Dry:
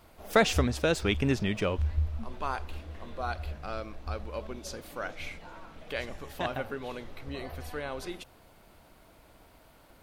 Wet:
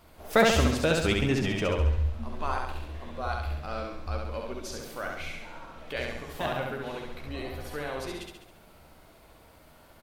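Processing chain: doubler 13 ms -11 dB; on a send: feedback echo 68 ms, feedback 54%, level -3 dB

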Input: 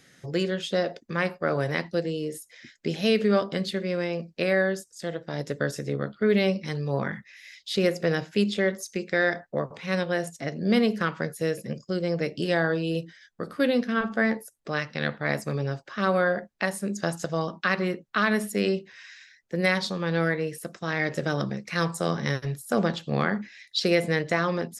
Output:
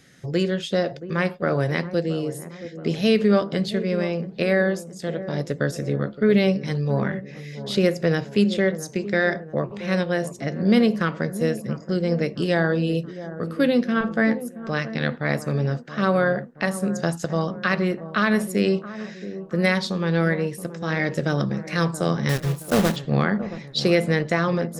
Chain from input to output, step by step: 22.29–22.97 block floating point 3-bit; low shelf 280 Hz +6 dB; dark delay 0.675 s, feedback 50%, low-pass 1100 Hz, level -13 dB; gain +1.5 dB

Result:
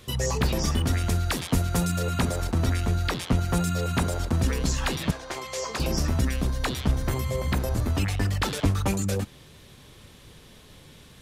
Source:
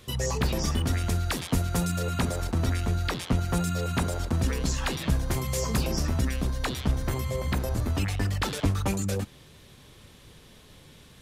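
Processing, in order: 5.11–5.8 three-band isolator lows -23 dB, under 380 Hz, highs -17 dB, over 7200 Hz; gain +2 dB

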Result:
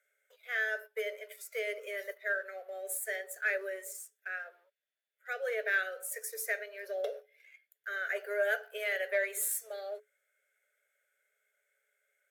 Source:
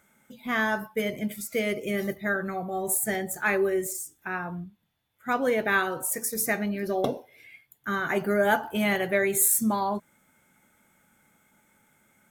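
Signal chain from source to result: Butterworth band-stop 1000 Hz, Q 1.2; sample leveller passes 1; rippled Chebyshev high-pass 410 Hz, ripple 9 dB; gain -5.5 dB

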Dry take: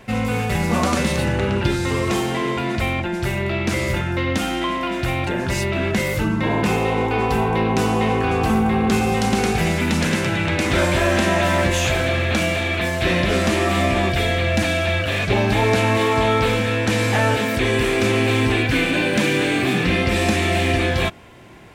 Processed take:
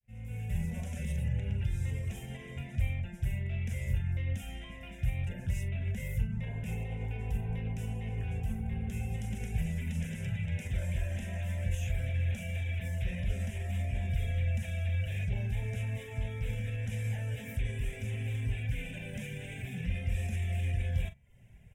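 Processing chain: opening faded in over 0.72 s; limiter -13 dBFS, peak gain reduction 5 dB; passive tone stack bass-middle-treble 10-0-1; fixed phaser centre 1200 Hz, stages 6; de-hum 68.07 Hz, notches 36; reverb removal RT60 0.54 s; doubler 43 ms -13 dB; gain +7 dB

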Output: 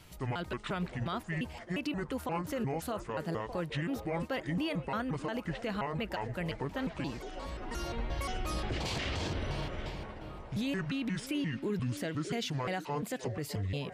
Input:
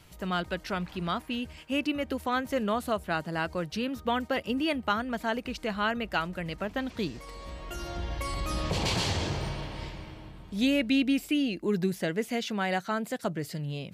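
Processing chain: trilling pitch shifter -7 st, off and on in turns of 0.176 s; limiter -26.5 dBFS, peak gain reduction 11.5 dB; delay with a stepping band-pass 0.612 s, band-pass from 450 Hz, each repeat 0.7 oct, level -7 dB

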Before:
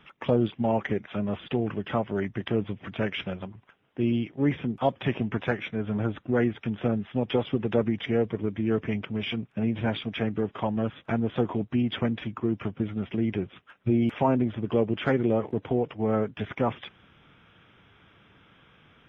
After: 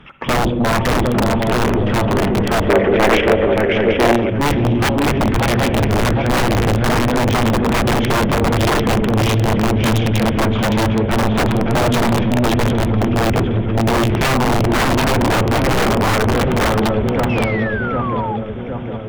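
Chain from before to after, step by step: octaver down 1 oct, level -6 dB; swung echo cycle 0.76 s, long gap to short 3:1, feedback 52%, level -4 dB; on a send at -8.5 dB: reverb RT60 1.6 s, pre-delay 45 ms; on the sum: wrapped overs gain 18 dB; 17.29–18.37 painted sound fall 800–2700 Hz -35 dBFS; tilt -1.5 dB/oct; in parallel at -3 dB: sine folder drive 10 dB, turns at -11 dBFS; 2.69–4.3 on the sum: graphic EQ 125/500/2000 Hz -9/+10/+8 dB; gain -1.5 dB

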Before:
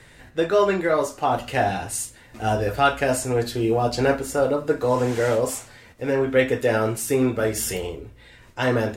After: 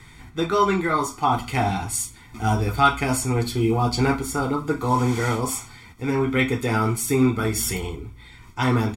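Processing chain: comb 0.9 ms, depth 89%

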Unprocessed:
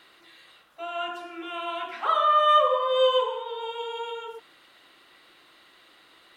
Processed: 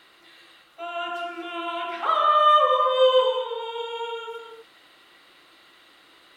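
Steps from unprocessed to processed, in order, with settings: non-linear reverb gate 0.26 s rising, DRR 6 dB; gain +1 dB

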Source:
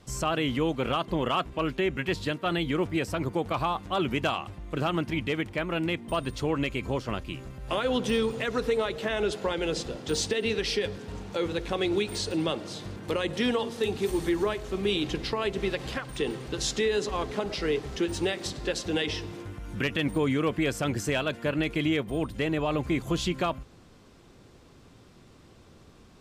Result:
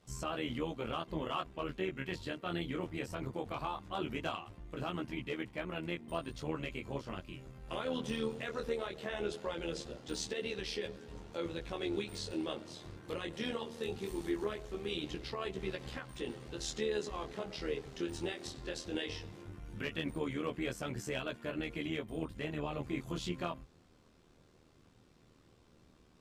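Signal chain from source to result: chorus 0.19 Hz, delay 16 ms, depth 7.1 ms; AM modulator 78 Hz, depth 45%; gain -5 dB

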